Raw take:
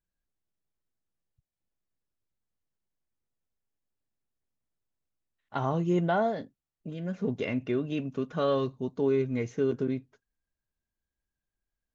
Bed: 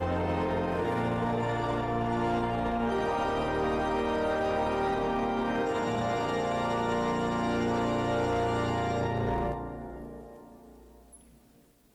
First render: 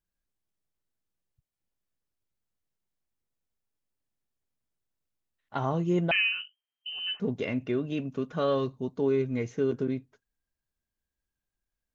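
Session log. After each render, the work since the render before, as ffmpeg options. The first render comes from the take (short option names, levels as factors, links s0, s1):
-filter_complex "[0:a]asettb=1/sr,asplit=3[s0][s1][s2];[s0]atrim=end=6.114[s3];[s1]atrim=start=6.11:end=7.2,asetpts=PTS-STARTPTS,afade=t=in:d=0.004:c=qsin,afade=t=out:st=1.086:d=0.004:c=qsin,lowpass=f=2700:t=q:w=0.5098,lowpass=f=2700:t=q:w=0.6013,lowpass=f=2700:t=q:w=0.9,lowpass=f=2700:t=q:w=2.563,afreqshift=-3200[s4];[s2]atrim=start=7.196[s5];[s3][s4]acrossfade=d=0.004:c1=hsin:c2=qsin[s6];[s6][s5]acrossfade=d=0.004:c1=qsin:c2=hsin"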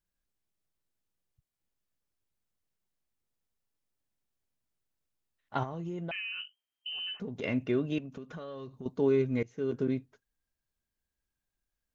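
-filter_complex "[0:a]asettb=1/sr,asplit=3[s0][s1][s2];[s0]atrim=end=5.634[s3];[s1]atrim=start=5.63:end=7.44,asetpts=PTS-STARTPTS,afade=t=in:d=0.004:c=qsin,afade=t=out:st=1.806:d=0.004:c=qsin,acompressor=threshold=0.02:ratio=8:attack=3.2:release=140:knee=1:detection=peak[s4];[s2]atrim=start=7.436[s5];[s3][s4]acrossfade=d=0.004:c1=hsin:c2=qsin[s6];[s6][s5]acrossfade=d=0.004:c1=qsin:c2=hsin,asettb=1/sr,asplit=3[s7][s8][s9];[s7]atrim=end=7.984[s10];[s8]atrim=start=7.98:end=8.86,asetpts=PTS-STARTPTS,afade=t=in:d=0.004:c=qsin,afade=t=out:st=0.876:d=0.004:c=qsin,acompressor=threshold=0.0112:ratio=8:attack=3.2:release=140:knee=1:detection=peak[s11];[s9]atrim=start=8.856[s12];[s10][s11]acrossfade=d=0.004:c1=hsin:c2=qsin[s13];[s13][s12]acrossfade=d=0.004:c1=qsin:c2=hsin,asplit=2[s14][s15];[s14]atrim=end=9.43,asetpts=PTS-STARTPTS,afade=t=out:st=9.426:d=0.004:c=hsin:silence=0.0891251[s16];[s15]atrim=start=9.43,asetpts=PTS-STARTPTS,afade=t=in:d=0.45:silence=0.0891251[s17];[s16][s17]concat=n=2:v=0:a=1"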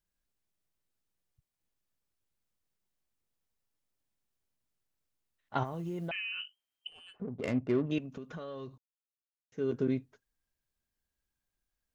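-filter_complex "[0:a]asplit=3[s0][s1][s2];[s0]afade=t=out:st=5.64:d=0.02[s3];[s1]acrusher=bits=8:mode=log:mix=0:aa=0.000001,afade=t=in:st=5.64:d=0.02,afade=t=out:st=6.08:d=0.02[s4];[s2]afade=t=in:st=6.08:d=0.02[s5];[s3][s4][s5]amix=inputs=3:normalize=0,asettb=1/sr,asplit=3[s6][s7][s8];[s6]atrim=end=6.874[s9];[s7]atrim=start=6.87:end=7.91,asetpts=PTS-STARTPTS,afade=t=in:d=0.004:c=qsin,afade=t=out:st=1.036:d=0.004:c=qsin,adynamicsmooth=sensitivity=3.5:basefreq=580[s10];[s8]atrim=start=7.906[s11];[s9][s10]acrossfade=d=0.004:c1=hsin:c2=qsin[s12];[s12][s11]acrossfade=d=0.004:c1=qsin:c2=hsin,asplit=3[s13][s14][s15];[s13]atrim=end=8.78,asetpts=PTS-STARTPTS,afade=t=out:st=8.776:d=0.004:c=hsin[s16];[s14]atrim=start=8.78:end=9.52,asetpts=PTS-STARTPTS,volume=0[s17];[s15]atrim=start=9.52,asetpts=PTS-STARTPTS,afade=t=in:d=0.004:c=hsin[s18];[s16][s17][s18]concat=n=3:v=0:a=1"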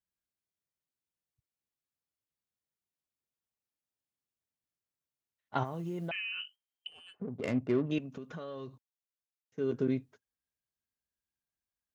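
-af "agate=range=0.398:threshold=0.00178:ratio=16:detection=peak,highpass=67"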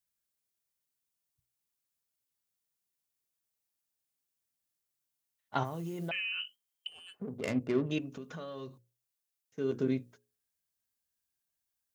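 -af "highshelf=f=5000:g=10,bandreject=f=60:t=h:w=6,bandreject=f=120:t=h:w=6,bandreject=f=180:t=h:w=6,bandreject=f=240:t=h:w=6,bandreject=f=300:t=h:w=6,bandreject=f=360:t=h:w=6,bandreject=f=420:t=h:w=6,bandreject=f=480:t=h:w=6,bandreject=f=540:t=h:w=6"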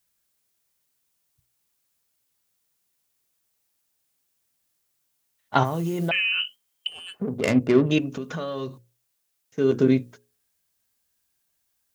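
-af "volume=3.98"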